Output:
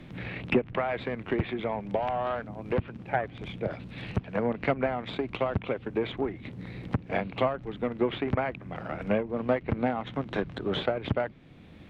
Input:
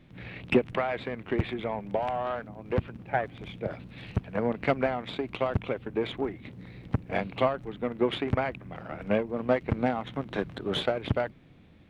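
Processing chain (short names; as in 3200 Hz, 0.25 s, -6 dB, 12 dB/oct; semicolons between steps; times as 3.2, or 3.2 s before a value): treble ducked by the level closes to 2900 Hz, closed at -23 dBFS; three-band squash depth 40%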